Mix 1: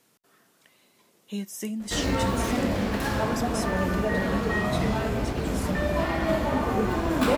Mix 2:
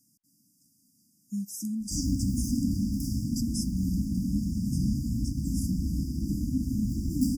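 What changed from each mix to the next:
master: add linear-phase brick-wall band-stop 310–4,700 Hz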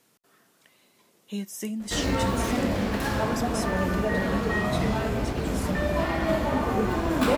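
master: remove linear-phase brick-wall band-stop 310–4,700 Hz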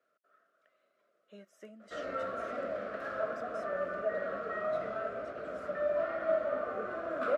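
master: add pair of resonant band-passes 900 Hz, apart 1.1 octaves

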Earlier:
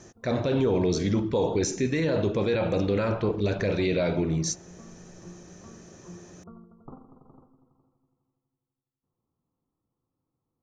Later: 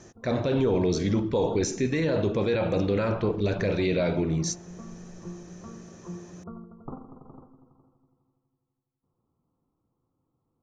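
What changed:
background +6.0 dB
master: add high-shelf EQ 7,200 Hz −3.5 dB

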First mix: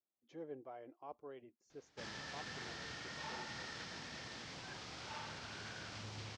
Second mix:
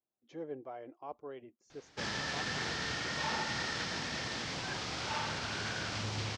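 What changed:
speech +6.0 dB
background +11.0 dB

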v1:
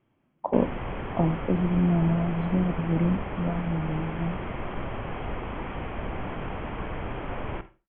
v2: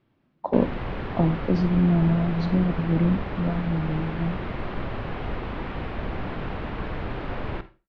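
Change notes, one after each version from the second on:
master: remove Chebyshev low-pass with heavy ripple 3,300 Hz, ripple 3 dB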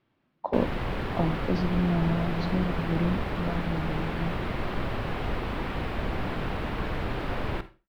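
speech: add low-shelf EQ 480 Hz −7 dB
background: remove high-frequency loss of the air 160 metres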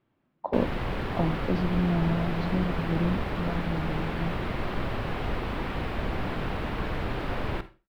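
speech: add high-shelf EQ 2,200 Hz −8 dB

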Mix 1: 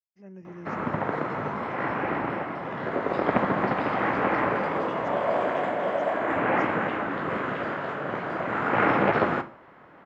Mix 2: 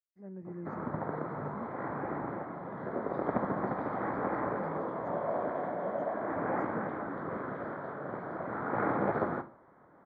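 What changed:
background −7.0 dB
master: add moving average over 16 samples

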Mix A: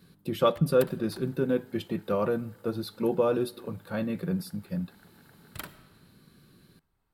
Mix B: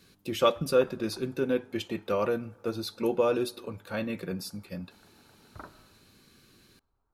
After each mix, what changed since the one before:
background: add Butterworth low-pass 1,400 Hz
master: add graphic EQ with 15 bands 160 Hz −10 dB, 2,500 Hz +6 dB, 6,300 Hz +11 dB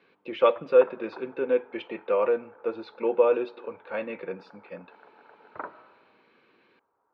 background +7.5 dB
master: add loudspeaker in its box 340–2,800 Hz, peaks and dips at 490 Hz +7 dB, 940 Hz +5 dB, 2,300 Hz +4 dB

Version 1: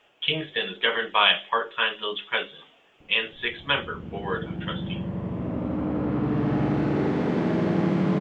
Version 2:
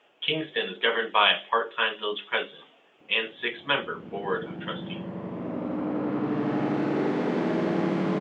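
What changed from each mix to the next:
speech: add spectral tilt −1.5 dB per octave
master: add high-pass filter 230 Hz 12 dB per octave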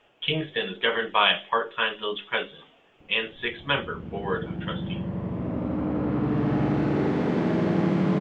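master: remove high-pass filter 230 Hz 12 dB per octave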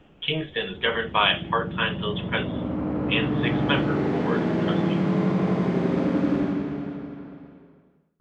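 background: entry −3.00 s

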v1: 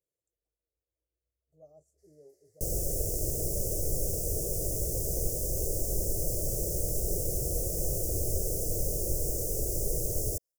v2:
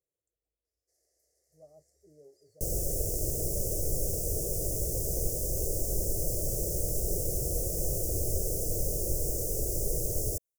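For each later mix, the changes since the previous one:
first sound: entry −1.10 s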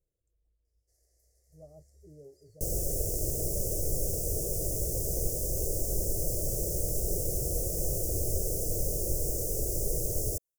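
speech: remove high-pass filter 520 Hz 6 dB per octave
first sound: add high-shelf EQ 8,500 Hz +4.5 dB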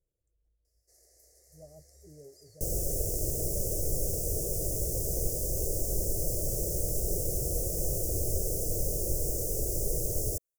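first sound +11.5 dB

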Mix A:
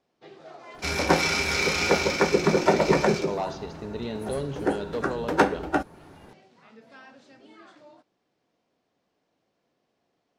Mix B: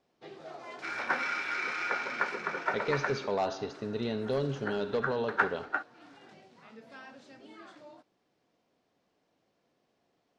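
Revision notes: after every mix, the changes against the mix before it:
second sound: add resonant band-pass 1,500 Hz, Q 2.9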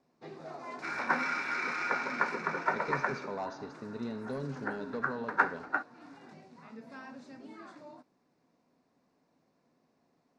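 speech −9.0 dB
master: add thirty-one-band graphic EQ 160 Hz +7 dB, 250 Hz +9 dB, 1,000 Hz +5 dB, 3,150 Hz −11 dB

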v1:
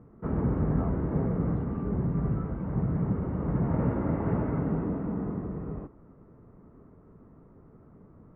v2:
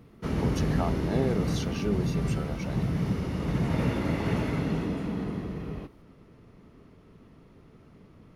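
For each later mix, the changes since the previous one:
speech +9.0 dB
master: remove low-pass filter 1,400 Hz 24 dB per octave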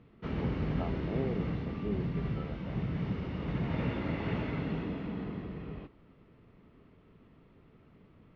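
speech: add moving average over 27 samples
master: add transistor ladder low-pass 4,100 Hz, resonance 25%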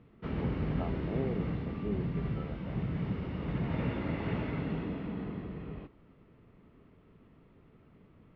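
master: add high-frequency loss of the air 120 metres

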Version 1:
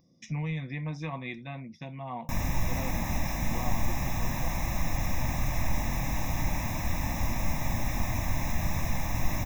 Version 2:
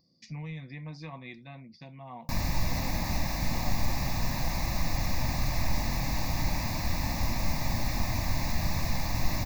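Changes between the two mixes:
speech −6.5 dB
master: remove Butterworth band-reject 4,500 Hz, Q 2.9

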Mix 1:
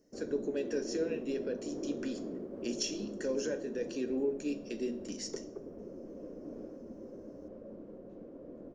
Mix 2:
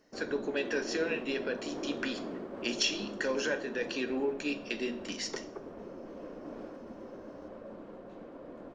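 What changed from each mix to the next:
background: remove high-frequency loss of the air 110 metres
master: add flat-topped bell 1,800 Hz +13.5 dB 2.9 octaves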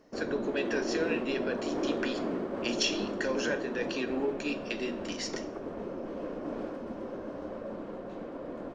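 background +7.0 dB

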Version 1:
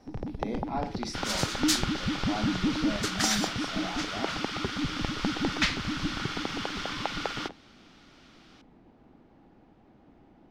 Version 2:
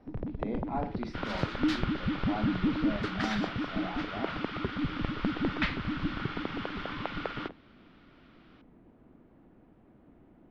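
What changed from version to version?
first sound: add parametric band 820 Hz −8.5 dB 0.21 octaves
master: add high-frequency loss of the air 380 metres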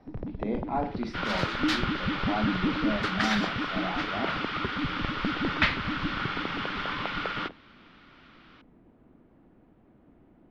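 speech +5.0 dB
second sound +7.5 dB
master: add high-shelf EQ 11,000 Hz +4.5 dB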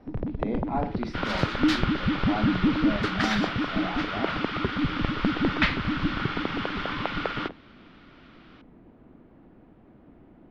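first sound +5.5 dB

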